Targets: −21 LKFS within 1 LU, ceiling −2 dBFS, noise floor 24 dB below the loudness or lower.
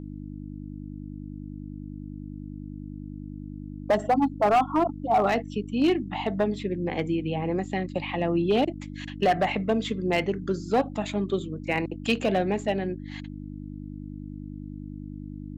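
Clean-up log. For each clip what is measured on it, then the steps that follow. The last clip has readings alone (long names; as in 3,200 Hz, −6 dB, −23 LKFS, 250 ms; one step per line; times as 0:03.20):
share of clipped samples 0.7%; peaks flattened at −15.5 dBFS; mains hum 50 Hz; hum harmonics up to 300 Hz; level of the hum −35 dBFS; integrated loudness −26.5 LKFS; sample peak −15.5 dBFS; target loudness −21.0 LKFS
→ clipped peaks rebuilt −15.5 dBFS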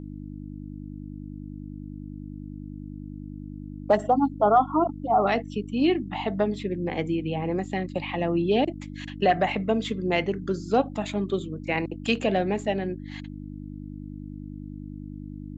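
share of clipped samples 0.0%; mains hum 50 Hz; hum harmonics up to 300 Hz; level of the hum −35 dBFS
→ hum removal 50 Hz, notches 6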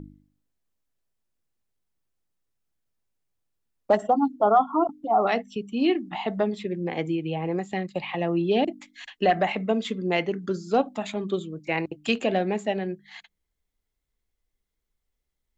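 mains hum none found; integrated loudness −26.0 LKFS; sample peak −8.5 dBFS; target loudness −21.0 LKFS
→ level +5 dB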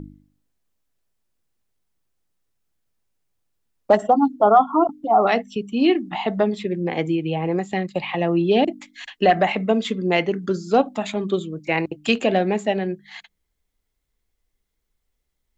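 integrated loudness −21.0 LKFS; sample peak −3.5 dBFS; background noise floor −76 dBFS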